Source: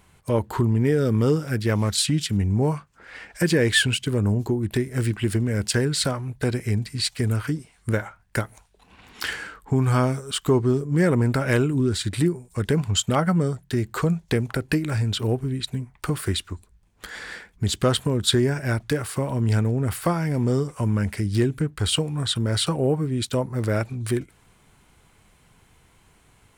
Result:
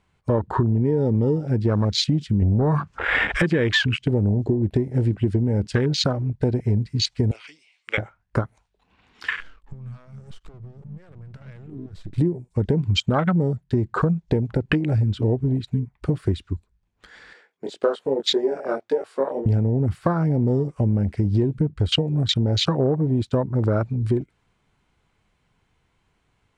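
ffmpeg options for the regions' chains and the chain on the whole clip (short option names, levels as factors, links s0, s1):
-filter_complex "[0:a]asettb=1/sr,asplit=3[s0][s1][s2];[s0]atrim=end=2.424[s3];[s1]atrim=start=2.42:end=3.42,asetpts=PTS-STARTPTS,afade=t=in:d=0.004:c=qsin,afade=t=out:st=0.996:d=0.004:c=qsin,acompressor=threshold=0.0251:ratio=5:attack=3.2:release=140:knee=1:detection=peak,aeval=exprs='0.211*sin(PI/2*4.47*val(0)/0.211)':c=same[s4];[s2]atrim=start=3.416[s5];[s3][s4]acrossfade=d=0.004:c1=hsin:c2=qsin[s6];[s6][s5]acrossfade=d=0.004:c1=qsin:c2=hsin,asettb=1/sr,asplit=3[s7][s8][s9];[s7]atrim=end=7.314[s10];[s8]atrim=start=7.31:end=7.98,asetpts=PTS-STARTPTS,afade=t=in:d=0.004:c=qsin,afade=t=out:st=0.666:d=0.004:c=qsin,highpass=800,lowpass=6900,highshelf=f=1900:t=q:w=3:g=7[s11];[s9]atrim=start=7.976[s12];[s10][s11]acrossfade=d=0.004:c1=hsin:c2=qsin[s13];[s13][s12]acrossfade=d=0.004:c1=qsin:c2=hsin,asettb=1/sr,asplit=3[s14][s15][s16];[s14]atrim=end=9.404[s17];[s15]atrim=start=9.4:end=12.18,asetpts=PTS-STARTPTS,afade=t=in:d=0.004:c=qsin,afade=t=out:st=2.776:d=0.004:c=qsin,acompressor=threshold=0.0282:ratio=16:attack=3.2:release=140:knee=1:detection=peak,aeval=exprs='max(val(0),0)':c=same[s18];[s16]atrim=start=12.176[s19];[s17][s18]acrossfade=d=0.004:c1=hsin:c2=qsin[s20];[s20][s19]acrossfade=d=0.004:c1=qsin:c2=hsin,asettb=1/sr,asplit=3[s21][s22][s23];[s21]atrim=end=17.334[s24];[s22]atrim=start=17.33:end=19.46,asetpts=PTS-STARTPTS,afade=t=in:d=0.004:c=qsin,afade=t=out:st=2.126:d=0.004:c=qsin,flanger=delay=18:depth=4.5:speed=1.8,highpass=f=460:t=q:w=1.7[s25];[s23]atrim=start=19.456[s26];[s24][s25]acrossfade=d=0.004:c1=hsin:c2=qsin[s27];[s27][s26]acrossfade=d=0.004:c1=qsin:c2=hsin,lowpass=5400,afwtdn=0.0398,acompressor=threshold=0.0708:ratio=6,volume=2.11"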